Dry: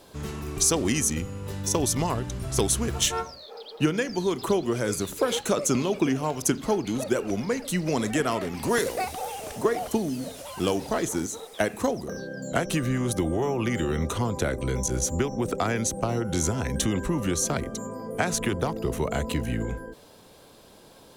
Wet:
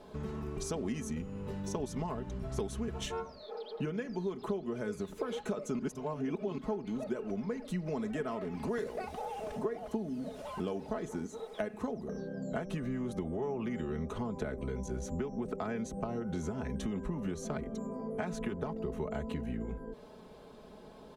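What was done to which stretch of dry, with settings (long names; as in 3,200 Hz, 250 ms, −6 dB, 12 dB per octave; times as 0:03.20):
0:05.79–0:06.58: reverse
whole clip: low-pass filter 1,100 Hz 6 dB per octave; comb filter 4.7 ms, depth 57%; downward compressor 2.5 to 1, threshold −38 dBFS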